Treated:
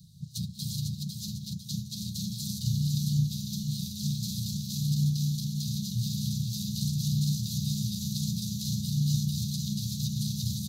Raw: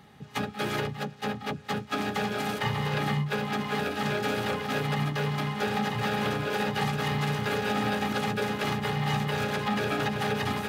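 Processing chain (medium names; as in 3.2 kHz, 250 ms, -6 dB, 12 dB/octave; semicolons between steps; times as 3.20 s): Chebyshev band-stop 180–4000 Hz, order 5; dynamic bell 100 Hz, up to -4 dB, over -50 dBFS, Q 5; on a send: feedback delay 501 ms, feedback 45%, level -4.5 dB; on the sum: trim +6 dB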